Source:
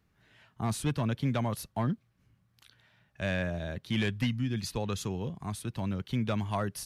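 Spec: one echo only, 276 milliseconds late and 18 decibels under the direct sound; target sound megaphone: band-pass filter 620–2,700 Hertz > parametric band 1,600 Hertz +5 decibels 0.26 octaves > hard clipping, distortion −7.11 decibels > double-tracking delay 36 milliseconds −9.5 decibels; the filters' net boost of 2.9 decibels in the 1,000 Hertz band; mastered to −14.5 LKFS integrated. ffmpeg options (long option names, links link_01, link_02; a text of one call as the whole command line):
ffmpeg -i in.wav -filter_complex "[0:a]highpass=620,lowpass=2700,equalizer=frequency=1000:width_type=o:gain=4.5,equalizer=frequency=1600:width_type=o:width=0.26:gain=5,aecho=1:1:276:0.126,asoftclip=type=hard:threshold=-34dB,asplit=2[link_01][link_02];[link_02]adelay=36,volume=-9.5dB[link_03];[link_01][link_03]amix=inputs=2:normalize=0,volume=26.5dB" out.wav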